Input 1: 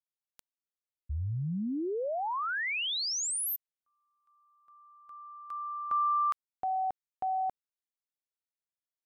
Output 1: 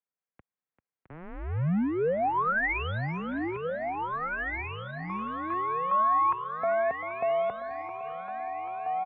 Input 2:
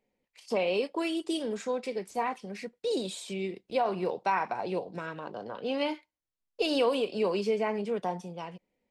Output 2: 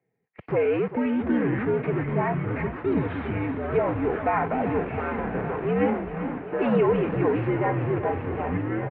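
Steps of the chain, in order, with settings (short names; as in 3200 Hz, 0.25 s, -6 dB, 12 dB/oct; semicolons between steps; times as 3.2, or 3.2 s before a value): comb 3.6 ms, depth 43%; in parallel at -3.5 dB: Schmitt trigger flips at -43.5 dBFS; on the sum: thinning echo 0.392 s, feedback 83%, high-pass 230 Hz, level -12 dB; echoes that change speed 0.499 s, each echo -6 st, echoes 2, each echo -6 dB; mistuned SSB -84 Hz 160–2300 Hz; gain +2 dB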